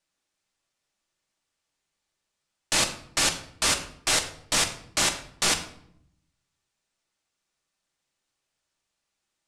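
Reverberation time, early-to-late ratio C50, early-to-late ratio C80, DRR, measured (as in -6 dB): 0.70 s, 11.0 dB, 13.5 dB, 4.0 dB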